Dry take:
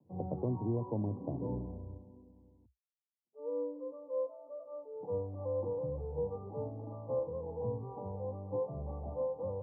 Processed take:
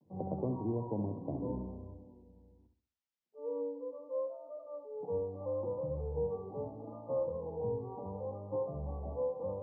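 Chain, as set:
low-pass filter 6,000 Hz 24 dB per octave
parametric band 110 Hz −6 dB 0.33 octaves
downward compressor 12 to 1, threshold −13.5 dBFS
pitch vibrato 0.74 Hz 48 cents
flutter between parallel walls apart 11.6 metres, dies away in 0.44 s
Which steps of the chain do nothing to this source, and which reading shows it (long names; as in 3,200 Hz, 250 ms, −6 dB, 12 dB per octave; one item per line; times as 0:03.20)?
low-pass filter 6,000 Hz: nothing at its input above 1,200 Hz
downward compressor, threshold −13.5 dBFS: peak of its input −23.0 dBFS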